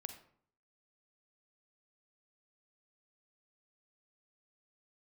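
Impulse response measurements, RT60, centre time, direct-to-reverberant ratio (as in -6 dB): 0.60 s, 12 ms, 7.5 dB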